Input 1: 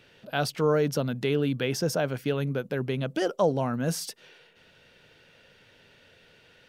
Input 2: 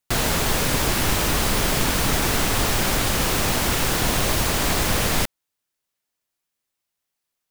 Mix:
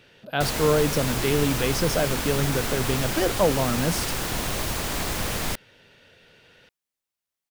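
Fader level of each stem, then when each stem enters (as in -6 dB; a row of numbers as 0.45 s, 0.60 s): +2.5 dB, -6.5 dB; 0.00 s, 0.30 s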